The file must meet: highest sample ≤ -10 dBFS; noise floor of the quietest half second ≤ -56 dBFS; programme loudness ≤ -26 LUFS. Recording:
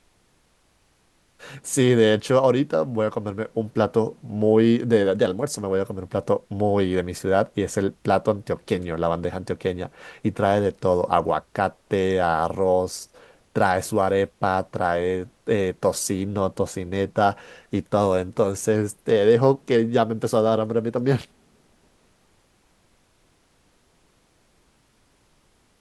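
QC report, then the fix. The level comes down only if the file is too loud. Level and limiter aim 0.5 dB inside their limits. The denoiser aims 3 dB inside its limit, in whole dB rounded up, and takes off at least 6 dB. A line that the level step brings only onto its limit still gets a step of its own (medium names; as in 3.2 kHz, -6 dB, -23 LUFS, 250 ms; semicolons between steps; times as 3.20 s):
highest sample -4.5 dBFS: fail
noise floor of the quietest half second -63 dBFS: pass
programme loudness -22.5 LUFS: fail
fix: trim -4 dB; peak limiter -10.5 dBFS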